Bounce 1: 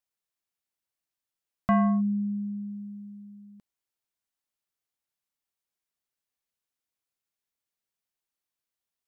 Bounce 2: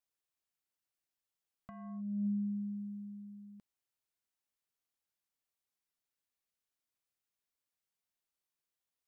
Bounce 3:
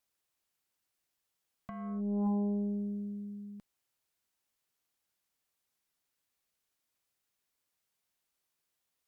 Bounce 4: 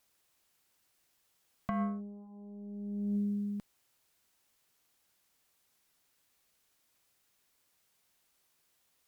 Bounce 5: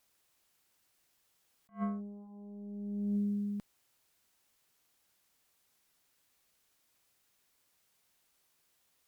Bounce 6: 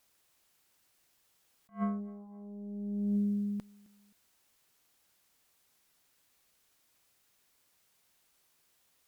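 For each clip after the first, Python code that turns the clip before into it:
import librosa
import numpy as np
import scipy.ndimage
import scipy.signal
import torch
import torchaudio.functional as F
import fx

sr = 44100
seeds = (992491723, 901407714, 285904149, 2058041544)

y1 = fx.over_compress(x, sr, threshold_db=-29.0, ratio=-0.5)
y1 = y1 * 10.0 ** (-7.0 / 20.0)
y2 = fx.cheby_harmonics(y1, sr, harmonics=(4, 5), levels_db=(-13, -20), full_scale_db=-29.0)
y2 = y2 * 10.0 ** (3.5 / 20.0)
y3 = fx.over_compress(y2, sr, threshold_db=-40.0, ratio=-0.5)
y3 = y3 * 10.0 ** (4.0 / 20.0)
y4 = fx.attack_slew(y3, sr, db_per_s=290.0)
y5 = fx.echo_feedback(y4, sr, ms=263, feedback_pct=36, wet_db=-23)
y5 = y5 * 10.0 ** (2.5 / 20.0)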